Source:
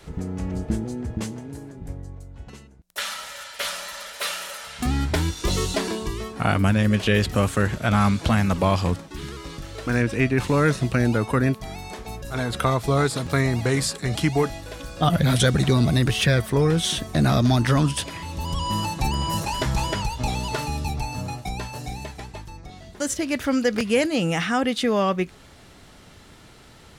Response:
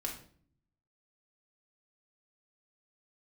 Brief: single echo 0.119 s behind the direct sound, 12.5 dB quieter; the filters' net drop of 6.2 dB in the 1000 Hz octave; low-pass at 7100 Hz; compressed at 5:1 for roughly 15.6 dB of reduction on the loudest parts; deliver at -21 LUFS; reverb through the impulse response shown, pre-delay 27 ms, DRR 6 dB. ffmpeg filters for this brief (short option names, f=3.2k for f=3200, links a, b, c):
-filter_complex "[0:a]lowpass=7.1k,equalizer=f=1k:t=o:g=-8.5,acompressor=threshold=-34dB:ratio=5,aecho=1:1:119:0.237,asplit=2[a][b];[1:a]atrim=start_sample=2205,adelay=27[c];[b][c]afir=irnorm=-1:irlink=0,volume=-7dB[d];[a][d]amix=inputs=2:normalize=0,volume=14.5dB"